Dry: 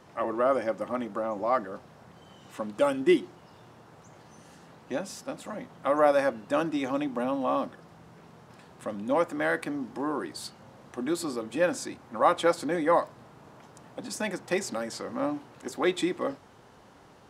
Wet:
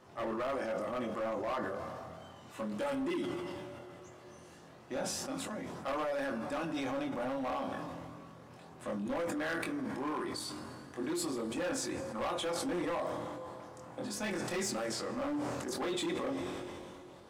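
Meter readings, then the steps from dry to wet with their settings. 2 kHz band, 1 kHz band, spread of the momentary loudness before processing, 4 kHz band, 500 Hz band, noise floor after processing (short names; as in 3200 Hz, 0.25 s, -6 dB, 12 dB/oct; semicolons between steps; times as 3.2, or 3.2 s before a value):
-6.5 dB, -9.0 dB, 16 LU, -2.0 dB, -8.5 dB, -54 dBFS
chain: two-slope reverb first 0.27 s, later 4.8 s, from -19 dB, DRR 9.5 dB; compressor 6:1, threshold -24 dBFS, peak gain reduction 8.5 dB; chorus voices 2, 0.17 Hz, delay 23 ms, depth 1 ms; overloaded stage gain 31 dB; sustainer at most 23 dB/s; gain -1 dB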